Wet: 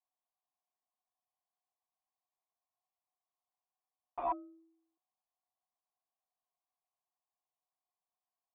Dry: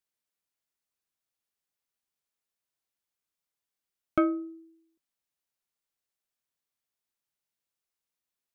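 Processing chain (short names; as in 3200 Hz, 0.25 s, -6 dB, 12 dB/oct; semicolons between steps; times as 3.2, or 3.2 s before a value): wrapped overs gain 27 dB; vocal tract filter a; gain +12 dB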